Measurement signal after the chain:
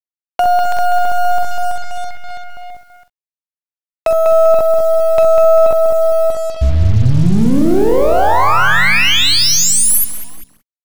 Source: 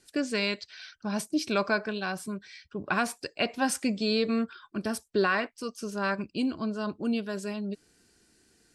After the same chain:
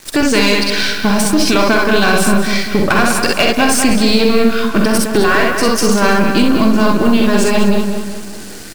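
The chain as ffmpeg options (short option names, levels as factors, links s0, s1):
-filter_complex "[0:a]aeval=exprs='if(lt(val(0),0),0.447*val(0),val(0))':c=same,asplit=2[s0][s1];[s1]aecho=0:1:46|64:0.447|0.596[s2];[s0][s2]amix=inputs=2:normalize=0,acompressor=threshold=0.02:ratio=12,apsyclip=59.6,asplit=2[s3][s4];[s4]adelay=197,lowpass=f=3800:p=1,volume=0.501,asplit=2[s5][s6];[s6]adelay=197,lowpass=f=3800:p=1,volume=0.46,asplit=2[s7][s8];[s8]adelay=197,lowpass=f=3800:p=1,volume=0.46,asplit=2[s9][s10];[s10]adelay=197,lowpass=f=3800:p=1,volume=0.46,asplit=2[s11][s12];[s12]adelay=197,lowpass=f=3800:p=1,volume=0.46,asplit=2[s13][s14];[s14]adelay=197,lowpass=f=3800:p=1,volume=0.46[s15];[s5][s7][s9][s11][s13][s15]amix=inputs=6:normalize=0[s16];[s3][s16]amix=inputs=2:normalize=0,acrusher=bits=3:mix=0:aa=0.5,volume=0.473"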